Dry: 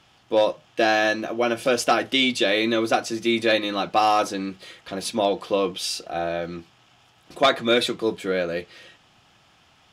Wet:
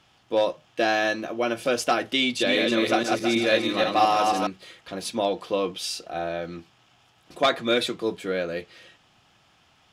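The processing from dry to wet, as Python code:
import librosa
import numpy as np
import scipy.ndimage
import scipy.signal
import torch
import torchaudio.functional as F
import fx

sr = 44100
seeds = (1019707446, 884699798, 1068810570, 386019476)

y = fx.reverse_delay_fb(x, sr, ms=161, feedback_pct=48, wet_db=-2.0, at=(2.23, 4.47))
y = y * 10.0 ** (-3.0 / 20.0)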